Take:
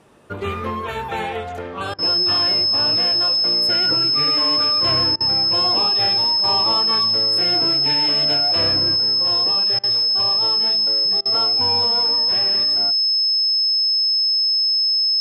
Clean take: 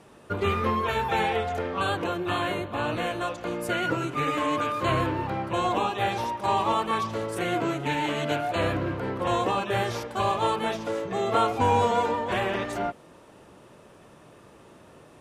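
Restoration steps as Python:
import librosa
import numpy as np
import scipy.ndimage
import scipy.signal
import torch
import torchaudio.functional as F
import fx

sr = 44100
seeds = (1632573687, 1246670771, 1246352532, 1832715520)

y = fx.notch(x, sr, hz=5200.0, q=30.0)
y = fx.fix_interpolate(y, sr, at_s=(1.94, 5.16, 9.79, 11.21), length_ms=44.0)
y = fx.fix_level(y, sr, at_s=8.96, step_db=5.5)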